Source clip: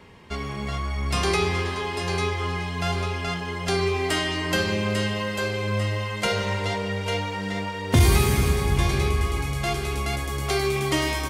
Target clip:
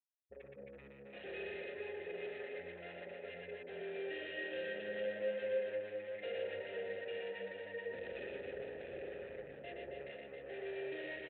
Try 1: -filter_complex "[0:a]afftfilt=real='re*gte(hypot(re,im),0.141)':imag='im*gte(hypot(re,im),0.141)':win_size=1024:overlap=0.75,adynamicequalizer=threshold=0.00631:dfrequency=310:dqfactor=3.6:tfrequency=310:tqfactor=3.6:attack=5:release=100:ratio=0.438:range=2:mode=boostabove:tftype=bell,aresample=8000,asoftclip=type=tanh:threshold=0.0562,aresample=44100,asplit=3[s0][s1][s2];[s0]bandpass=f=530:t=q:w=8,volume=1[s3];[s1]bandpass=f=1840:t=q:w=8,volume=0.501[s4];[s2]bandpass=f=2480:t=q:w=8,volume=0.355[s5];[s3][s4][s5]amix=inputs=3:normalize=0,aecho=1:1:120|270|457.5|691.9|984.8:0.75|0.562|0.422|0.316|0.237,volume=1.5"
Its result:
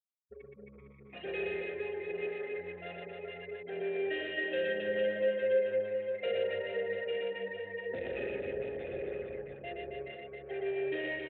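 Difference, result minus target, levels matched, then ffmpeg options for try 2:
saturation: distortion -5 dB
-filter_complex "[0:a]afftfilt=real='re*gte(hypot(re,im),0.141)':imag='im*gte(hypot(re,im),0.141)':win_size=1024:overlap=0.75,adynamicequalizer=threshold=0.00631:dfrequency=310:dqfactor=3.6:tfrequency=310:tqfactor=3.6:attack=5:release=100:ratio=0.438:range=2:mode=boostabove:tftype=bell,aresample=8000,asoftclip=type=tanh:threshold=0.015,aresample=44100,asplit=3[s0][s1][s2];[s0]bandpass=f=530:t=q:w=8,volume=1[s3];[s1]bandpass=f=1840:t=q:w=8,volume=0.501[s4];[s2]bandpass=f=2480:t=q:w=8,volume=0.355[s5];[s3][s4][s5]amix=inputs=3:normalize=0,aecho=1:1:120|270|457.5|691.9|984.8:0.75|0.562|0.422|0.316|0.237,volume=1.5"

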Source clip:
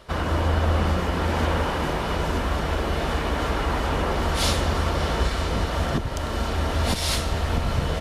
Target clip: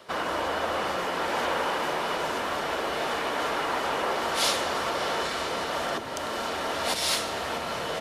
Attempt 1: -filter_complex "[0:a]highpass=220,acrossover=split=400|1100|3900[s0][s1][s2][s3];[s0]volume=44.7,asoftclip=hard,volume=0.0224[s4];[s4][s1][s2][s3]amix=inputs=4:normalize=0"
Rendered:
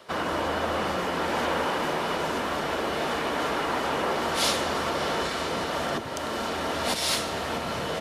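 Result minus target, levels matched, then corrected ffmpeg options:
overload inside the chain: distortion -6 dB
-filter_complex "[0:a]highpass=220,acrossover=split=400|1100|3900[s0][s1][s2][s3];[s0]volume=133,asoftclip=hard,volume=0.0075[s4];[s4][s1][s2][s3]amix=inputs=4:normalize=0"

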